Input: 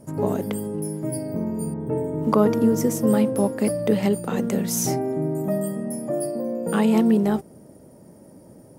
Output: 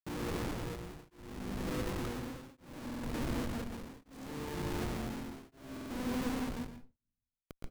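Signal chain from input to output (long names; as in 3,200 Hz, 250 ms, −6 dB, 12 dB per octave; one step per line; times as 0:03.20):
loudspeakers that aren't time-aligned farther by 29 metres −10 dB, 73 metres −3 dB
flanger 0.27 Hz, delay 3.3 ms, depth 8.9 ms, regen +86%
in parallel at −8.5 dB: soft clipping −24.5 dBFS, distortion −8 dB
on the sum: comb filter 2.5 ms, depth 51%
downward compressor 6 to 1, threshold −35 dBFS, peak gain reduction 18.5 dB
parametric band 250 Hz +11.5 dB 0.4 octaves
speed change +14%
low-shelf EQ 69 Hz +6 dB
comparator with hysteresis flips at −33.5 dBFS
on a send at −5.5 dB: convolution reverb RT60 0.45 s, pre-delay 116 ms
on the sum: shaped tremolo triangle 0.68 Hz, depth 100%
buffer that repeats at 0:02.85/0:05.72, samples 2,048, times 3
level −1.5 dB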